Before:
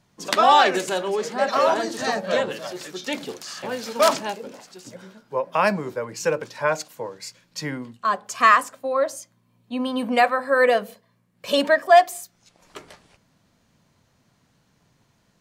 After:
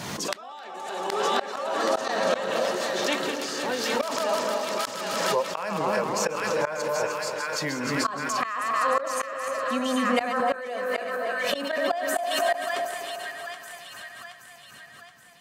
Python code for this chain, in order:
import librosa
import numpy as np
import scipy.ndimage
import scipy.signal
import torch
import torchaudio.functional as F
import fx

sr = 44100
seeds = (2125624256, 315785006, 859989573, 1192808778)

p1 = fx.reverse_delay_fb(x, sr, ms=153, feedback_pct=65, wet_db=-8)
p2 = fx.rider(p1, sr, range_db=5, speed_s=0.5)
p3 = p1 + (p2 * 10.0 ** (-2.0 / 20.0))
p4 = fx.highpass(p3, sr, hz=260.0, slope=6)
p5 = p4 + fx.echo_split(p4, sr, split_hz=1100.0, low_ms=250, high_ms=774, feedback_pct=52, wet_db=-6.5, dry=0)
p6 = fx.gate_flip(p5, sr, shuts_db=-6.0, range_db=-24)
p7 = fx.pre_swell(p6, sr, db_per_s=28.0)
y = p7 * 10.0 ** (-7.0 / 20.0)